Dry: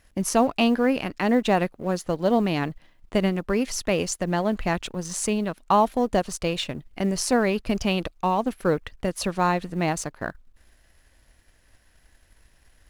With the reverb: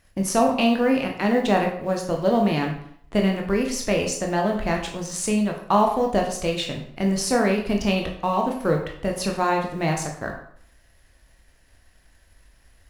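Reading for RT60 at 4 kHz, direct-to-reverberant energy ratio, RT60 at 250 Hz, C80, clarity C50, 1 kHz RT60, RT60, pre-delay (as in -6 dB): 0.50 s, 1.0 dB, 0.65 s, 10.0 dB, 6.0 dB, 0.60 s, 0.60 s, 14 ms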